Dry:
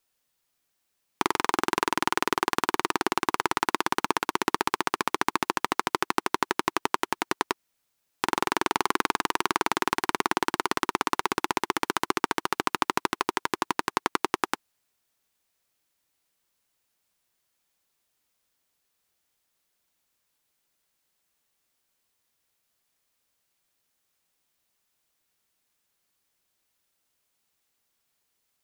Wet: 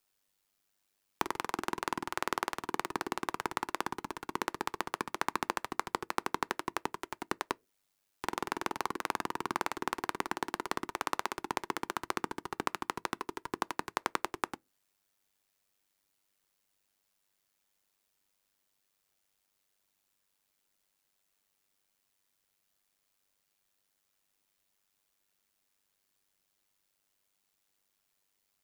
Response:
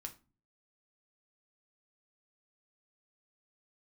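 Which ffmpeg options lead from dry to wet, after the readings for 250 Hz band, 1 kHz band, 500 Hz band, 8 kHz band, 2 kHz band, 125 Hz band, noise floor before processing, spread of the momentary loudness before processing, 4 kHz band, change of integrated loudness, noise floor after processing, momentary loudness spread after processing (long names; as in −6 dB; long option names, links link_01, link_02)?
−9.0 dB, −9.0 dB, −8.5 dB, −9.5 dB, −9.5 dB, −7.0 dB, −77 dBFS, 3 LU, −11.0 dB, −9.0 dB, −79 dBFS, 4 LU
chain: -filter_complex "[0:a]acrossover=split=150|1800|5100[link_01][link_02][link_03][link_04];[link_01]acompressor=threshold=-49dB:ratio=4[link_05];[link_02]acompressor=threshold=-29dB:ratio=4[link_06];[link_03]acompressor=threshold=-42dB:ratio=4[link_07];[link_04]acompressor=threshold=-44dB:ratio=4[link_08];[link_05][link_06][link_07][link_08]amix=inputs=4:normalize=0,tremolo=f=98:d=0.75,asplit=2[link_09][link_10];[1:a]atrim=start_sample=2205,asetrate=83790,aresample=44100[link_11];[link_10][link_11]afir=irnorm=-1:irlink=0,volume=-6.5dB[link_12];[link_09][link_12]amix=inputs=2:normalize=0"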